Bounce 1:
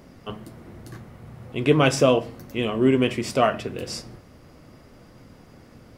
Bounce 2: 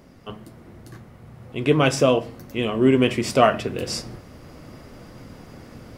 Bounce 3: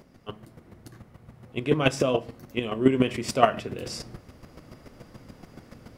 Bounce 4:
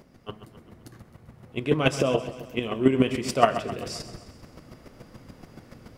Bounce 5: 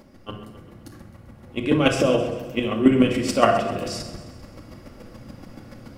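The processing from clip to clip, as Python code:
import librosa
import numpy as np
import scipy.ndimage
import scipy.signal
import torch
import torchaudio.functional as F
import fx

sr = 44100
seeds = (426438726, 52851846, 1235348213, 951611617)

y1 = fx.rider(x, sr, range_db=5, speed_s=2.0)
y1 = y1 * librosa.db_to_amplitude(1.5)
y2 = fx.chopper(y1, sr, hz=7.0, depth_pct=60, duty_pct=15)
y3 = fx.echo_feedback(y2, sr, ms=131, feedback_pct=55, wet_db=-13.0)
y4 = fx.room_shoebox(y3, sr, seeds[0], volume_m3=2100.0, walls='furnished', distance_m=2.3)
y4 = y4 * librosa.db_to_amplitude(2.0)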